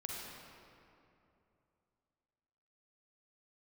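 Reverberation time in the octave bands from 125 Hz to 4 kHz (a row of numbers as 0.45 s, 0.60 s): 3.2 s, 3.0 s, 2.9 s, 2.6 s, 2.2 s, 1.6 s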